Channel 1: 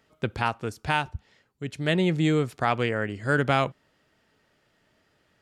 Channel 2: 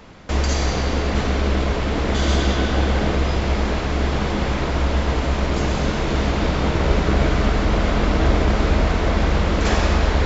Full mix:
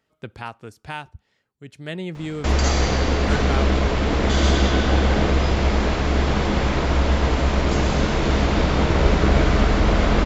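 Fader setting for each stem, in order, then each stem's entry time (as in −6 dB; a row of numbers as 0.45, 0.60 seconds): −7.0, +1.0 decibels; 0.00, 2.15 seconds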